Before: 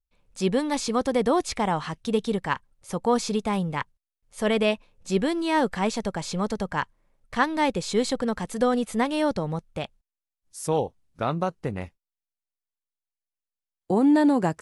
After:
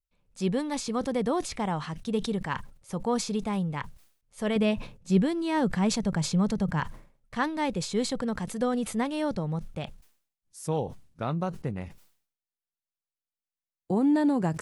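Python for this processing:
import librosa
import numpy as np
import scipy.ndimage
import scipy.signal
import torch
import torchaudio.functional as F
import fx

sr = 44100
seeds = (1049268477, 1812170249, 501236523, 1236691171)

y = fx.peak_eq(x, sr, hz=150.0, db=fx.steps((0.0, 5.5), (4.56, 14.0), (6.8, 6.5)), octaves=1.4)
y = fx.sustainer(y, sr, db_per_s=110.0)
y = F.gain(torch.from_numpy(y), -6.5).numpy()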